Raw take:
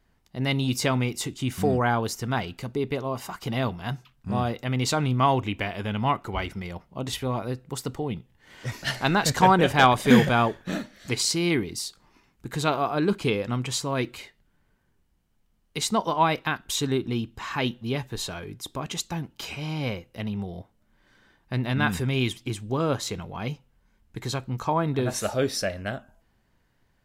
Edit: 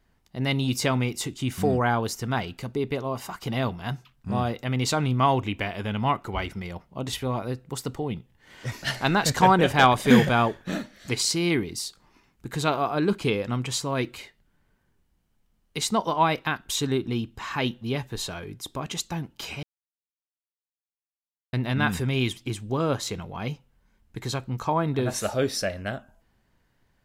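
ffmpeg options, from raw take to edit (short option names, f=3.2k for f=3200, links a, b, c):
-filter_complex "[0:a]asplit=3[a][b][c];[a]atrim=end=19.63,asetpts=PTS-STARTPTS,afade=t=out:st=19.626:d=0.004:c=hsin[d];[b]atrim=start=19.63:end=21.53,asetpts=PTS-STARTPTS,volume=0[e];[c]atrim=start=21.53,asetpts=PTS-STARTPTS,afade=t=in:d=0.004:c=hsin[f];[d][e][f]concat=n=3:v=0:a=1"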